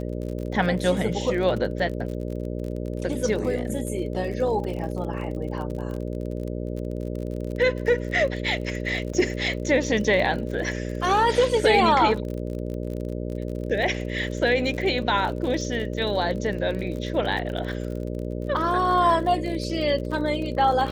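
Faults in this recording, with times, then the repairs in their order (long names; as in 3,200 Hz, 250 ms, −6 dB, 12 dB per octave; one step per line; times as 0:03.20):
mains buzz 60 Hz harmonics 10 −30 dBFS
surface crackle 41 per second −32 dBFS
0:09.13–0:09.14: drop-out 5.5 ms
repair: click removal
hum removal 60 Hz, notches 10
repair the gap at 0:09.13, 5.5 ms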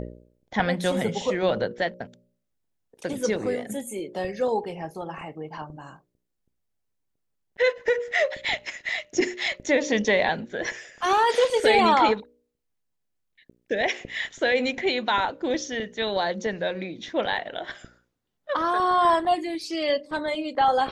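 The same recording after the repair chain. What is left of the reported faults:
none of them is left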